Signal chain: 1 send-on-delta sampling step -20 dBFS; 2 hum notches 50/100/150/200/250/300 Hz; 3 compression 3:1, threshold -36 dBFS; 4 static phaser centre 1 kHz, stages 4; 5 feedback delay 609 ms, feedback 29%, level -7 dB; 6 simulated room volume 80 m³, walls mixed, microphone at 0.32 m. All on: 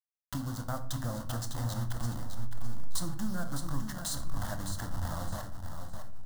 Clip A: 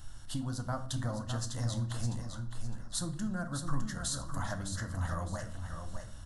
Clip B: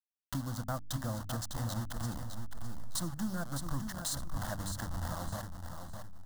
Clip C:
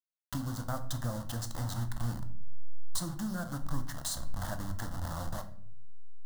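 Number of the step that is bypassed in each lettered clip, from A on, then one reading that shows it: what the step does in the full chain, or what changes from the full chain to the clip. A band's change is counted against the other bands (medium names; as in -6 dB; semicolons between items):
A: 1, distortion -6 dB; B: 6, echo-to-direct -3.5 dB to -6.5 dB; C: 5, echo-to-direct -3.5 dB to -7.0 dB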